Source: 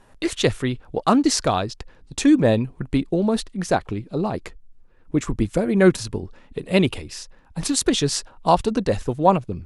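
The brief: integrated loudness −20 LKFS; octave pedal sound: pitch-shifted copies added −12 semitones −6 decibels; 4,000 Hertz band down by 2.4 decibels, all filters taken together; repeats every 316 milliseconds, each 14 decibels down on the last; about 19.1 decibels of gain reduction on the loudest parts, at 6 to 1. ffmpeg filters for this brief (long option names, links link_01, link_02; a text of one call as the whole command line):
ffmpeg -i in.wav -filter_complex "[0:a]equalizer=frequency=4000:width_type=o:gain=-3,acompressor=threshold=-32dB:ratio=6,aecho=1:1:316|632:0.2|0.0399,asplit=2[link_01][link_02];[link_02]asetrate=22050,aresample=44100,atempo=2,volume=-6dB[link_03];[link_01][link_03]amix=inputs=2:normalize=0,volume=15.5dB" out.wav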